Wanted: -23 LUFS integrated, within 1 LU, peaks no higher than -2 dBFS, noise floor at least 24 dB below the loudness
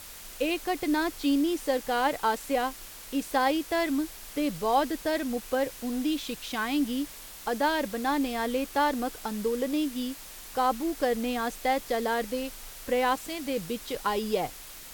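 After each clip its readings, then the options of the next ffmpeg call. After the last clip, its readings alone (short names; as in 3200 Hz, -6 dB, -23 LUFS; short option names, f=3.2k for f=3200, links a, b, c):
noise floor -45 dBFS; noise floor target -53 dBFS; loudness -29.0 LUFS; peak -13.5 dBFS; loudness target -23.0 LUFS
-> -af "afftdn=nr=8:nf=-45"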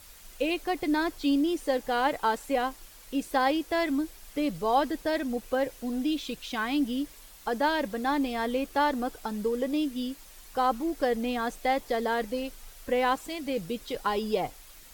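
noise floor -51 dBFS; noise floor target -54 dBFS
-> -af "afftdn=nr=6:nf=-51"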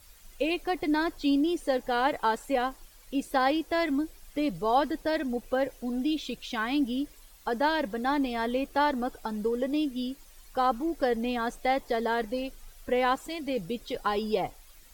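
noise floor -54 dBFS; loudness -29.5 LUFS; peak -13.5 dBFS; loudness target -23.0 LUFS
-> -af "volume=6.5dB"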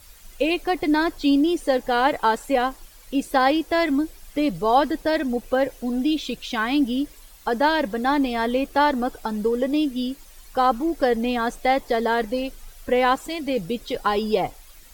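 loudness -23.0 LUFS; peak -7.0 dBFS; noise floor -48 dBFS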